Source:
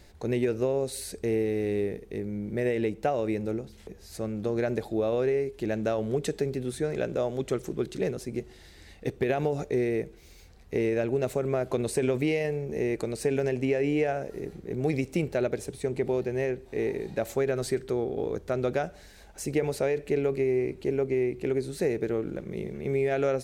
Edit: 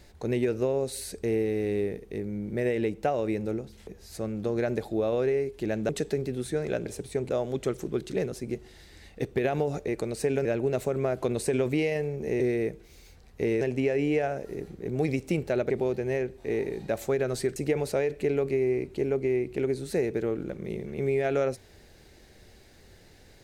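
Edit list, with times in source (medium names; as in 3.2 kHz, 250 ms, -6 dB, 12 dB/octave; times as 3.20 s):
5.89–6.17 s: delete
9.73–10.94 s: swap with 12.89–13.46 s
15.55–15.98 s: move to 7.14 s
17.84–19.43 s: delete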